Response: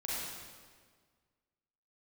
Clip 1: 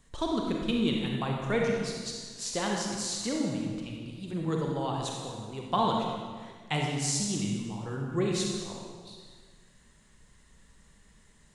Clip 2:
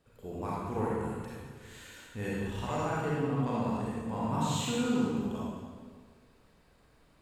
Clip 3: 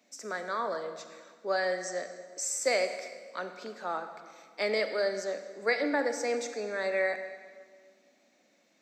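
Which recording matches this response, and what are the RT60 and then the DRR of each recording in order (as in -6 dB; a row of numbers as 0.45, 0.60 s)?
2; 1.7, 1.7, 1.7 s; -1.0, -7.5, 8.0 dB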